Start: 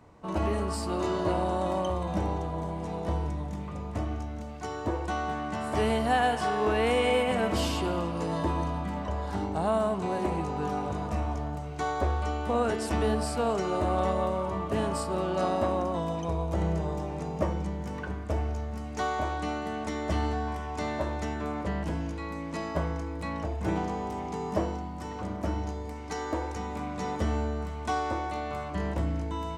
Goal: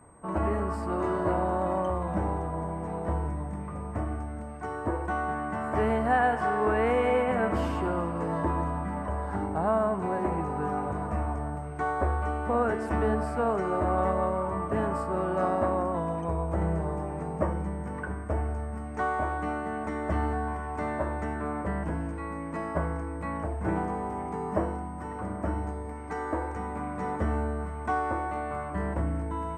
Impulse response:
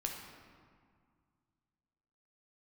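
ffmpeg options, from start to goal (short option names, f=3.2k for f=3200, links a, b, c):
-af "aeval=exprs='val(0)+0.00501*sin(2*PI*8400*n/s)':c=same,highshelf=f=2.5k:t=q:w=1.5:g=-14"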